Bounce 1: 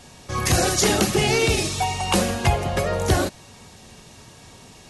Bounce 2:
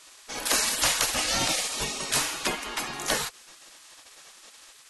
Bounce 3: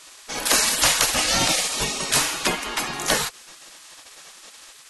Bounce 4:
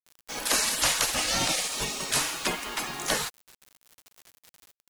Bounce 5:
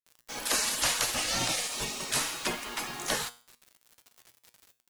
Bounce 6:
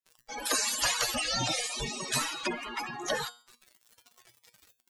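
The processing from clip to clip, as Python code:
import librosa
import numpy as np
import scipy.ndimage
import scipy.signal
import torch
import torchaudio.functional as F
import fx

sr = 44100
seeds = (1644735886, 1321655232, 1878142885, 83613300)

y1 = fx.spec_gate(x, sr, threshold_db=-15, keep='weak')
y1 = y1 * librosa.db_to_amplitude(1.0)
y2 = fx.peak_eq(y1, sr, hz=170.0, db=4.5, octaves=0.22)
y2 = y2 * librosa.db_to_amplitude(5.5)
y3 = fx.quant_dither(y2, sr, seeds[0], bits=6, dither='none')
y3 = y3 * librosa.db_to_amplitude(-6.0)
y4 = fx.comb_fb(y3, sr, f0_hz=120.0, decay_s=0.42, harmonics='all', damping=0.0, mix_pct=60)
y4 = y4 * librosa.db_to_amplitude(3.0)
y5 = fx.spec_expand(y4, sr, power=2.7)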